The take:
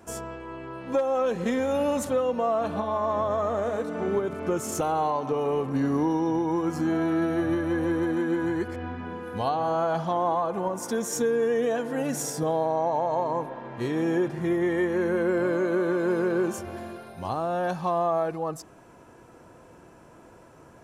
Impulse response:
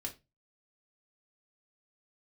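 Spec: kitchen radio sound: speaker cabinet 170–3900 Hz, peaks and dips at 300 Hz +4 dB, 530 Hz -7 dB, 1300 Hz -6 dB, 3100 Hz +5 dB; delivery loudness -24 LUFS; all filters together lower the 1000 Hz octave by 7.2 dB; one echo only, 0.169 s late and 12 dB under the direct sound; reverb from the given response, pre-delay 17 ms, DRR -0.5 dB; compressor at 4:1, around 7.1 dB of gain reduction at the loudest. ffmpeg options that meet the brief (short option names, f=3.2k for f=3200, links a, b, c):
-filter_complex "[0:a]equalizer=f=1k:t=o:g=-8,acompressor=threshold=-31dB:ratio=4,aecho=1:1:169:0.251,asplit=2[a][b];[1:a]atrim=start_sample=2205,adelay=17[c];[b][c]afir=irnorm=-1:irlink=0,volume=1.5dB[d];[a][d]amix=inputs=2:normalize=0,highpass=170,equalizer=f=300:t=q:w=4:g=4,equalizer=f=530:t=q:w=4:g=-7,equalizer=f=1.3k:t=q:w=4:g=-6,equalizer=f=3.1k:t=q:w=4:g=5,lowpass=f=3.9k:w=0.5412,lowpass=f=3.9k:w=1.3066,volume=6dB"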